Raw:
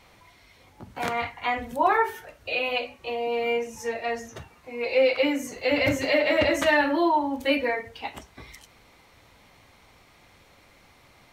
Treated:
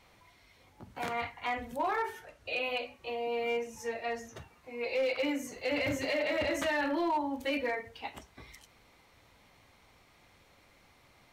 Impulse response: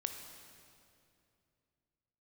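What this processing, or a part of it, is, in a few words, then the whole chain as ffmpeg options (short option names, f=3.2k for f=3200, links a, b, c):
limiter into clipper: -filter_complex "[0:a]alimiter=limit=-16dB:level=0:latency=1:release=29,asoftclip=type=hard:threshold=-18.5dB,asettb=1/sr,asplit=3[a][b][c];[a]atrim=end=2.054[d];[b]atrim=start=2.05:end=2.62,asetpts=PTS-STARTPTS,afade=t=in:d=0.004:c=qsin,afade=t=out:st=0.566:d=0.004:c=qsin,lowpass=12k[e];[c]atrim=start=2.616[f];[d][e]acrossfade=d=0.004:c1=hsin:c2=qsin[g];[g][f]acrossfade=d=0.004:c1=qsin:c2=hsin,volume=-6.5dB"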